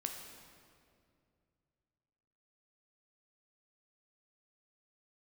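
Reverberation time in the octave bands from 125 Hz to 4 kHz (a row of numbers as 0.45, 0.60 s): 3.4, 2.8, 2.6, 2.1, 1.9, 1.6 s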